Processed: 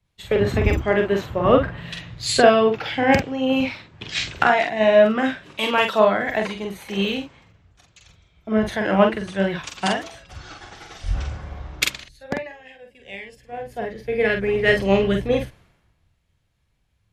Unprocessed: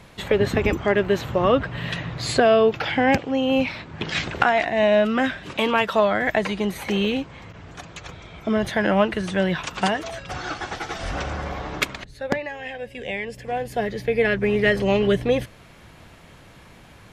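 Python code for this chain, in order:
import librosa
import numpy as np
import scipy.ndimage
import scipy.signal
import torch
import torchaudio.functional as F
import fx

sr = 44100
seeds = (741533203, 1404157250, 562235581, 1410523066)

y = fx.doubler(x, sr, ms=46.0, db=-4.5)
y = fx.band_widen(y, sr, depth_pct=100)
y = y * librosa.db_to_amplitude(-1.5)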